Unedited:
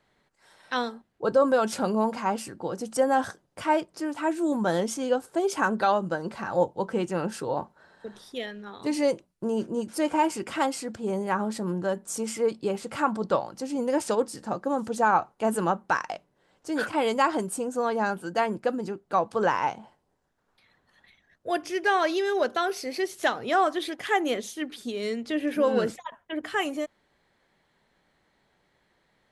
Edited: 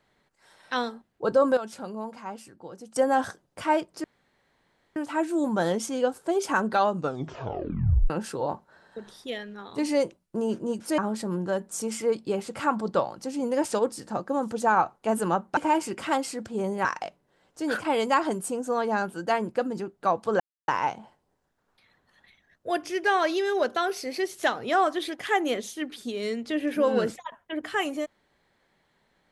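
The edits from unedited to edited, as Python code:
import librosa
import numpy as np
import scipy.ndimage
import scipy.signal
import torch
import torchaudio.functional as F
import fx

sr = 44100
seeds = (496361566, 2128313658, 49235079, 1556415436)

y = fx.edit(x, sr, fx.clip_gain(start_s=1.57, length_s=1.39, db=-10.5),
    fx.insert_room_tone(at_s=4.04, length_s=0.92),
    fx.tape_stop(start_s=6.02, length_s=1.16),
    fx.move(start_s=10.06, length_s=1.28, to_s=15.93),
    fx.insert_silence(at_s=19.48, length_s=0.28), tone=tone)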